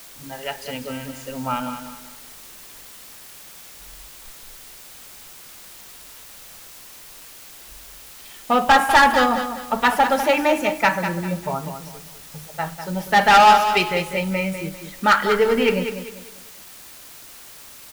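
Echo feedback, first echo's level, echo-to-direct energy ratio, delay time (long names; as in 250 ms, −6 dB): 33%, −9.0 dB, −8.5 dB, 198 ms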